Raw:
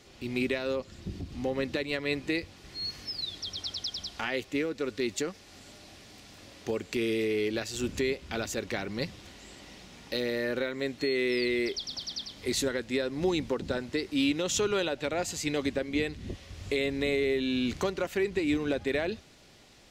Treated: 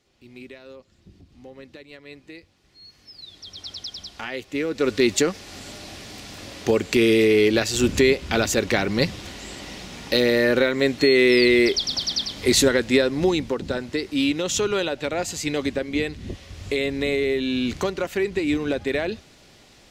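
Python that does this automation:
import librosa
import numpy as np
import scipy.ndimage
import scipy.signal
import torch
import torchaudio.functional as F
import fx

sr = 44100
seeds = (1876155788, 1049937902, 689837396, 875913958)

y = fx.gain(x, sr, db=fx.line((2.89, -12.0), (3.72, 0.5), (4.46, 0.5), (4.88, 12.0), (12.95, 12.0), (13.45, 5.0)))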